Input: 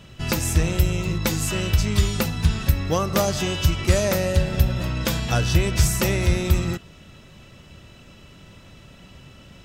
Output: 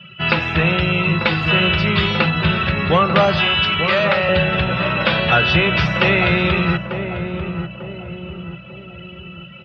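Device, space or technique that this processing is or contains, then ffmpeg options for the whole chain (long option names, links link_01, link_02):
overdrive pedal into a guitar cabinet: -filter_complex "[0:a]asplit=2[link_01][link_02];[link_02]highpass=frequency=720:poles=1,volume=19dB,asoftclip=type=tanh:threshold=-3.5dB[link_03];[link_01][link_03]amix=inputs=2:normalize=0,lowpass=frequency=8000:poles=1,volume=-6dB,highpass=78,equalizer=frequency=170:width_type=q:width=4:gain=9,equalizer=frequency=270:width_type=q:width=4:gain=-7,equalizer=frequency=1400:width_type=q:width=4:gain=4,equalizer=frequency=2700:width_type=q:width=4:gain=4,lowpass=frequency=3600:width=0.5412,lowpass=frequency=3600:width=1.3066,asettb=1/sr,asplit=3[link_04][link_05][link_06];[link_04]atrim=end=3.384[link_07];[link_05]atrim=start=3.38:end=4.29,asetpts=PTS-STARTPTS,afade=type=in:duration=0.004:curve=qsin,afade=type=out:start_time=0.906:duration=0.004:curve=qsin,highpass=630[link_08];[link_06]atrim=start=4.286[link_09];[link_07][link_08]acrossfade=duration=0.004:curve1=hsin:curve2=qsin[link_10];[link_10][link_09]acrossfade=duration=0.004:curve1=qsin:curve2=hsin,afftdn=noise_reduction=17:noise_floor=-33,asplit=2[link_11][link_12];[link_12]adelay=894,lowpass=frequency=850:poles=1,volume=-6dB,asplit=2[link_13][link_14];[link_14]adelay=894,lowpass=frequency=850:poles=1,volume=0.51,asplit=2[link_15][link_16];[link_16]adelay=894,lowpass=frequency=850:poles=1,volume=0.51,asplit=2[link_17][link_18];[link_18]adelay=894,lowpass=frequency=850:poles=1,volume=0.51,asplit=2[link_19][link_20];[link_20]adelay=894,lowpass=frequency=850:poles=1,volume=0.51,asplit=2[link_21][link_22];[link_22]adelay=894,lowpass=frequency=850:poles=1,volume=0.51[link_23];[link_11][link_13][link_15][link_17][link_19][link_21][link_23]amix=inputs=7:normalize=0"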